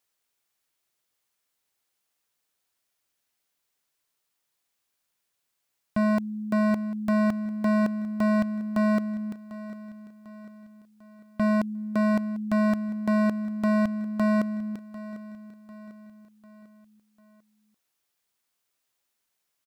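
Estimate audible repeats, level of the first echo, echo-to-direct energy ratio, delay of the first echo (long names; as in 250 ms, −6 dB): 3, −16.5 dB, −15.5 dB, 747 ms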